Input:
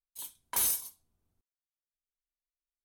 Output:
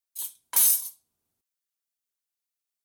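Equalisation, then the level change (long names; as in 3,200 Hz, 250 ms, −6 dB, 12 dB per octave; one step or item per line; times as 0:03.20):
high-pass filter 260 Hz 6 dB per octave
high-shelf EQ 3,600 Hz +9.5 dB
0.0 dB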